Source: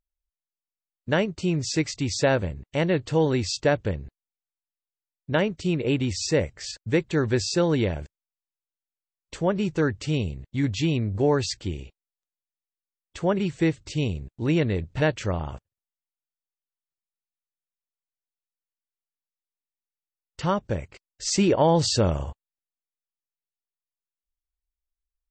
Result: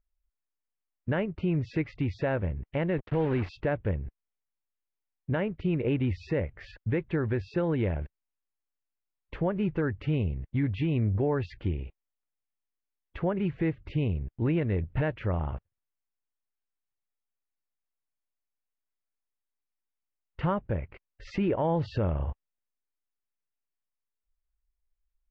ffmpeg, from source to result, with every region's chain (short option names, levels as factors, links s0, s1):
-filter_complex "[0:a]asettb=1/sr,asplit=3[s0][s1][s2];[s0]atrim=end=2.984[s3];[s1]atrim=start=2.98:end=3.49,asetpts=PTS-STARTPTS,afade=t=in:d=0.004:c=qsin,afade=t=out:st=0.506:d=0.004:c=qsin,highpass=70,acrusher=bits=4:mix=0:aa=0.5[s4];[s2]atrim=start=3.486[s5];[s3][s4]acrossfade=d=0.004:c1=hsin:c2=qsin[s6];[s6][s5]acrossfade=d=0.004:c1=qsin:c2=hsin,lowpass=f=2500:w=0.5412,lowpass=f=2500:w=1.3066,lowshelf=f=67:g=10,alimiter=limit=0.112:level=0:latency=1:release=296"